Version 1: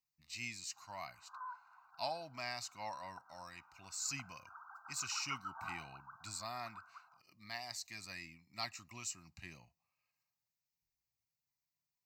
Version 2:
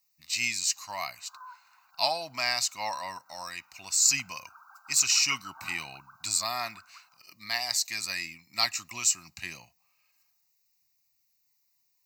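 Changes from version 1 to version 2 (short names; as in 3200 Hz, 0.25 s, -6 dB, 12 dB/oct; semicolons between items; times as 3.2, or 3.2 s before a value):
speech +11.5 dB; master: add tilt +2.5 dB/oct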